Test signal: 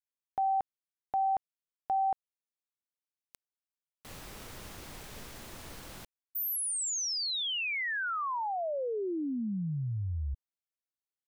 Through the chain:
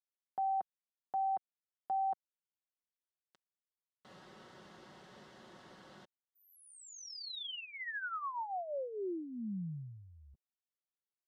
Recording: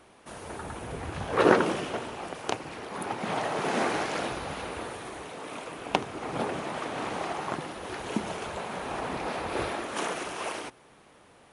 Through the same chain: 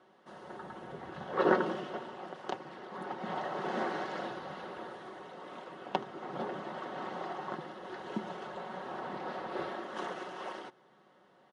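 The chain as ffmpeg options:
-af "highpass=160,lowpass=3500,equalizer=f=2400:w=5.7:g=-13.5,aecho=1:1:5.4:0.48,volume=0.447"

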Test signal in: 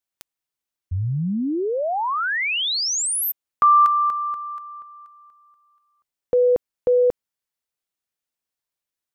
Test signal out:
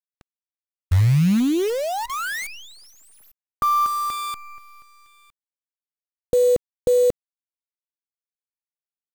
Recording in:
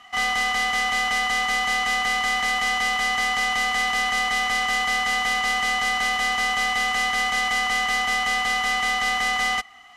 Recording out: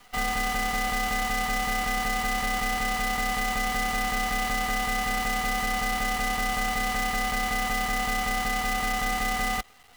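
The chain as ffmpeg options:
-filter_complex "[0:a]aemphasis=mode=reproduction:type=bsi,acrossover=split=2700[s0][s1];[s1]acompressor=threshold=0.00631:ratio=4:attack=1:release=60[s2];[s0][s2]amix=inputs=2:normalize=0,equalizer=f=240:w=0.46:g=5.5,bandreject=f=1000:w=7.9,acrusher=bits=5:dc=4:mix=0:aa=0.000001,volume=0.562"

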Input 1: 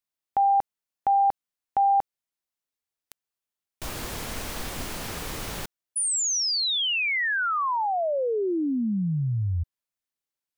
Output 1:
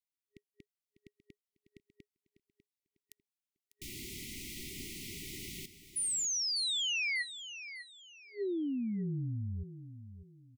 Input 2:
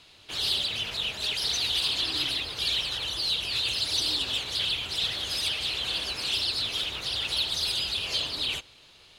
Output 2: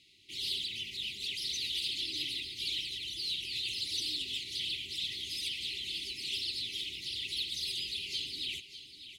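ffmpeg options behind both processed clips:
-af "afftfilt=real='re*(1-between(b*sr/4096,410,1900))':imag='im*(1-between(b*sr/4096,410,1900))':win_size=4096:overlap=0.75,lowshelf=f=81:g=-10,aecho=1:1:598|1196|1794:0.237|0.0711|0.0213,volume=0.398"

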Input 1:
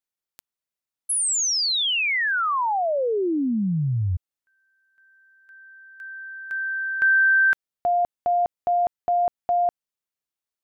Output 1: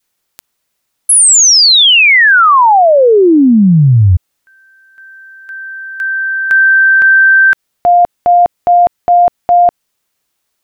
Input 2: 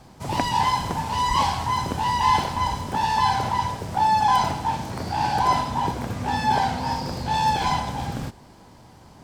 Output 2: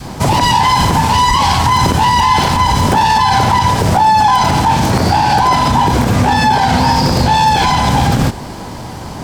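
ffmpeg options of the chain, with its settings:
-af "adynamicequalizer=threshold=0.0251:dfrequency=630:dqfactor=1.1:tfrequency=630:tqfactor=1.1:attack=5:release=100:ratio=0.375:range=2:mode=cutabove:tftype=bell,acompressor=threshold=0.0355:ratio=2:attack=15:release=74:detection=rms,alimiter=level_in=15.8:limit=0.891:release=50:level=0:latency=1,volume=0.794"

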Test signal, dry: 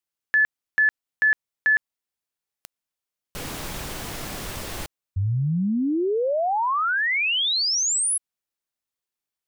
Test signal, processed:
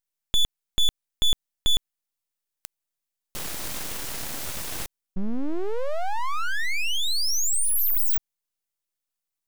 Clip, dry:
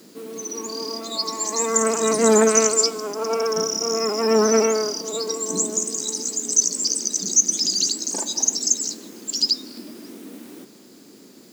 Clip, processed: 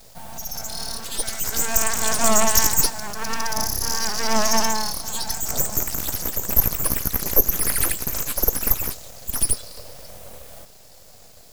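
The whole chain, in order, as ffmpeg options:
-af "aeval=exprs='abs(val(0))':c=same,highshelf=f=4900:g=6"

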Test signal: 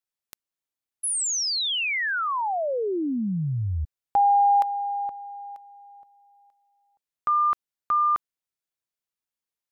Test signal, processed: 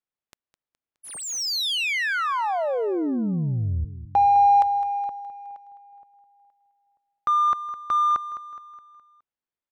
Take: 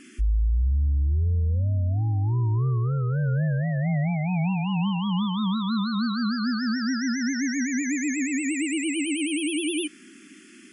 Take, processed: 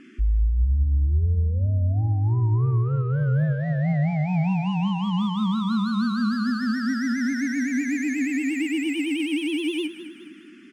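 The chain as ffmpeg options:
-af "adynamicsmooth=sensitivity=3.5:basefreq=2800,aecho=1:1:209|418|627|836|1045:0.224|0.11|0.0538|0.0263|0.0129,volume=1.19"

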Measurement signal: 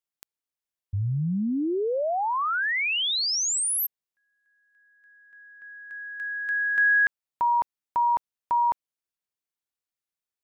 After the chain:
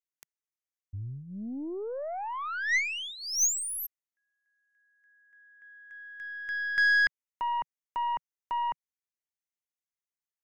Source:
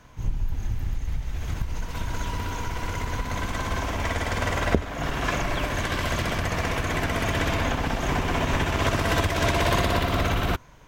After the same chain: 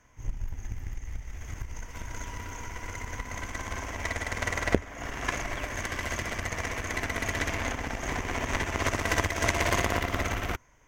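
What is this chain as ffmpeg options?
-af "equalizer=f=160:t=o:w=0.33:g=-10,equalizer=f=2000:t=o:w=0.33:g=8,equalizer=f=4000:t=o:w=0.33:g=-10,equalizer=f=6300:t=o:w=0.33:g=9,aeval=exprs='0.708*(cos(1*acos(clip(val(0)/0.708,-1,1)))-cos(1*PI/2))+0.00501*(cos(6*acos(clip(val(0)/0.708,-1,1)))-cos(6*PI/2))+0.0708*(cos(7*acos(clip(val(0)/0.708,-1,1)))-cos(7*PI/2))+0.0126*(cos(8*acos(clip(val(0)/0.708,-1,1)))-cos(8*PI/2))':c=same"

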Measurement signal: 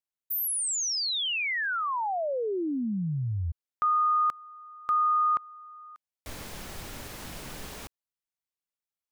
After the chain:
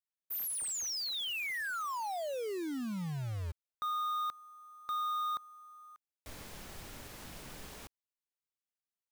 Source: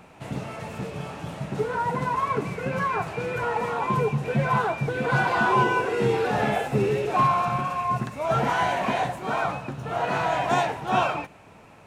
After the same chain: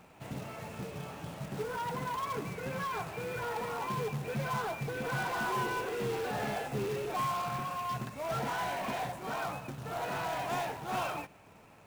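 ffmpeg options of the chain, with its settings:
-af "asoftclip=type=tanh:threshold=0.075,acrusher=bits=3:mode=log:mix=0:aa=0.000001,volume=0.422"

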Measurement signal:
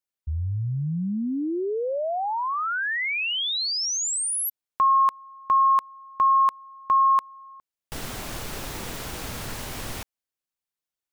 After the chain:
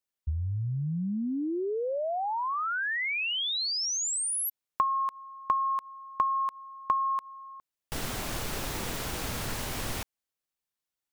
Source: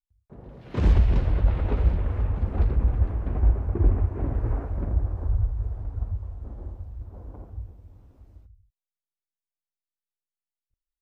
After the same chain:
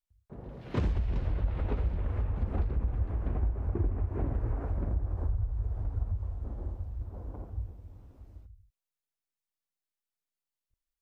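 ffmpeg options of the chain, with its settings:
-af "acompressor=threshold=0.0282:ratio=4:attack=66:release=185:knee=1:detection=peak"

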